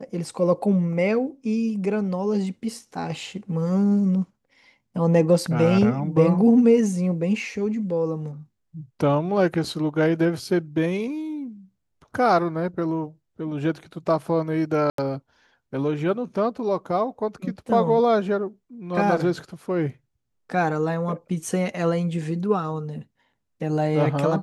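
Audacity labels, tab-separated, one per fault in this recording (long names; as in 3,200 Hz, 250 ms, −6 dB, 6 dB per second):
14.900000	14.980000	drop-out 83 ms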